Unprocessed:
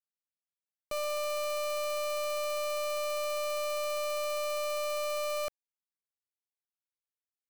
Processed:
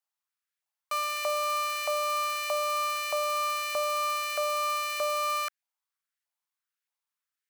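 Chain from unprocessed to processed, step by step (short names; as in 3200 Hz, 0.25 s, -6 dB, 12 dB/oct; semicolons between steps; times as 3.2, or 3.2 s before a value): LFO high-pass saw up 1.6 Hz 740–1800 Hz; 3.03–5.02 requantised 12-bit, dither triangular; gain +4 dB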